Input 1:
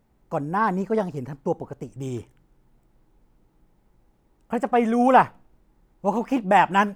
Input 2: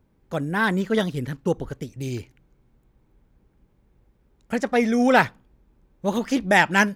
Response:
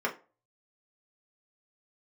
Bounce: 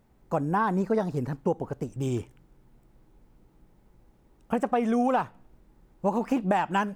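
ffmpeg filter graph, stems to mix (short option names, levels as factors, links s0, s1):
-filter_complex "[0:a]acompressor=threshold=0.0708:ratio=10,volume=1.19,asplit=2[s0][s1];[1:a]asoftclip=type=hard:threshold=0.266,volume=0.266[s2];[s1]apad=whole_len=306879[s3];[s2][s3]sidechaincompress=threshold=0.0224:ratio=8:attack=16:release=390[s4];[s0][s4]amix=inputs=2:normalize=0"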